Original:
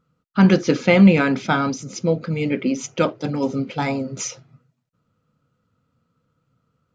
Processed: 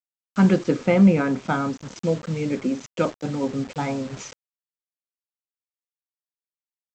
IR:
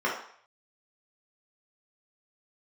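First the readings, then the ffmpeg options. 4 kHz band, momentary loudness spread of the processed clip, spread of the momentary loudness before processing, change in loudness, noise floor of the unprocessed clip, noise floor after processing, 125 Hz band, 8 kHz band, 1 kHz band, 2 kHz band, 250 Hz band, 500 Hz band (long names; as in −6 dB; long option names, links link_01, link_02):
−8.0 dB, 14 LU, 12 LU, −3.0 dB, −73 dBFS, below −85 dBFS, −3.0 dB, can't be measured, −4.0 dB, −7.5 dB, −3.0 dB, −3.0 dB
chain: -af "highshelf=frequency=3700:gain=-11.5,aresample=16000,acrusher=bits=5:mix=0:aa=0.000001,aresample=44100,adynamicequalizer=threshold=0.0141:dfrequency=1800:dqfactor=0.7:tfrequency=1800:tqfactor=0.7:attack=5:release=100:ratio=0.375:range=4:mode=cutabove:tftype=highshelf,volume=-3dB"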